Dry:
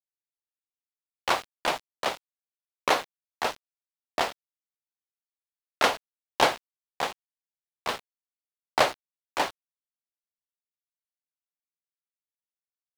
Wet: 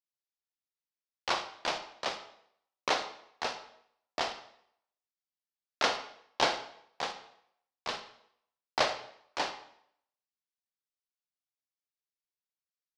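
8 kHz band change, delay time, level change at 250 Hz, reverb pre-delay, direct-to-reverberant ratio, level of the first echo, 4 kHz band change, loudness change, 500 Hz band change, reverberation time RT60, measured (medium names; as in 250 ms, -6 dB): -5.0 dB, no echo, -6.5 dB, 31 ms, 8.0 dB, no echo, -2.5 dB, -5.5 dB, -6.5 dB, 0.70 s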